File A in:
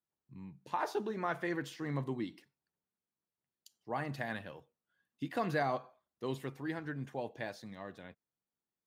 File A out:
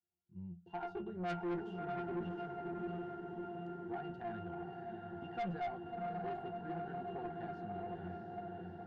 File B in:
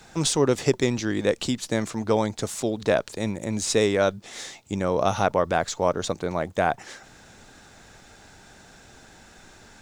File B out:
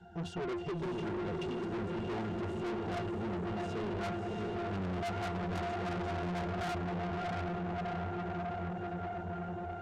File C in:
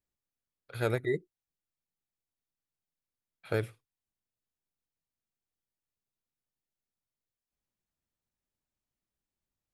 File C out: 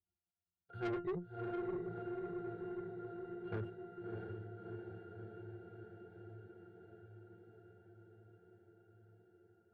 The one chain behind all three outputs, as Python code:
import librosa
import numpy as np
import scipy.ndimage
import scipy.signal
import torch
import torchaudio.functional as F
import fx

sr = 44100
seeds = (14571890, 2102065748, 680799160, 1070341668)

p1 = fx.peak_eq(x, sr, hz=880.0, db=6.0, octaves=0.23)
p2 = fx.rider(p1, sr, range_db=4, speed_s=0.5)
p3 = p1 + (p2 * librosa.db_to_amplitude(0.5))
p4 = fx.octave_resonator(p3, sr, note='F', decay_s=0.21)
p5 = fx.echo_diffused(p4, sr, ms=658, feedback_pct=72, wet_db=-4)
p6 = fx.tube_stage(p5, sr, drive_db=39.0, bias=0.25)
y = p6 * librosa.db_to_amplitude(4.5)